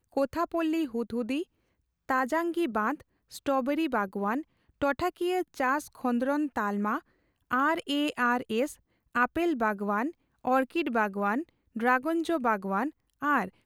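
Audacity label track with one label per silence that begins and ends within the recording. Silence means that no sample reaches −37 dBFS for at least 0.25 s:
1.430000	2.090000	silence
2.950000	3.330000	silence
4.410000	4.820000	silence
6.990000	7.510000	silence
8.720000	9.150000	silence
10.100000	10.450000	silence
11.430000	11.760000	silence
12.890000	13.220000	silence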